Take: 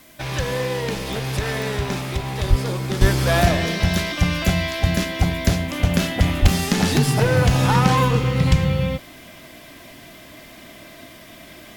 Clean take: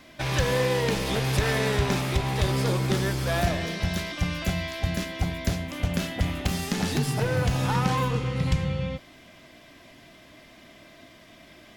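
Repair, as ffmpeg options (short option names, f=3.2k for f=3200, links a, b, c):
-filter_complex "[0:a]adeclick=t=4,asplit=3[a][b][c];[a]afade=t=out:st=2.49:d=0.02[d];[b]highpass=f=140:w=0.5412,highpass=f=140:w=1.3066,afade=t=in:st=2.49:d=0.02,afade=t=out:st=2.61:d=0.02[e];[c]afade=t=in:st=2.61:d=0.02[f];[d][e][f]amix=inputs=3:normalize=0,asplit=3[g][h][i];[g]afade=t=out:st=3:d=0.02[j];[h]highpass=f=140:w=0.5412,highpass=f=140:w=1.3066,afade=t=in:st=3:d=0.02,afade=t=out:st=3.12:d=0.02[k];[i]afade=t=in:st=3.12:d=0.02[l];[j][k][l]amix=inputs=3:normalize=0,asplit=3[m][n][o];[m]afade=t=out:st=6.41:d=0.02[p];[n]highpass=f=140:w=0.5412,highpass=f=140:w=1.3066,afade=t=in:st=6.41:d=0.02,afade=t=out:st=6.53:d=0.02[q];[o]afade=t=in:st=6.53:d=0.02[r];[p][q][r]amix=inputs=3:normalize=0,agate=range=-21dB:threshold=-35dB,asetnsamples=n=441:p=0,asendcmd='3.01 volume volume -8dB',volume=0dB"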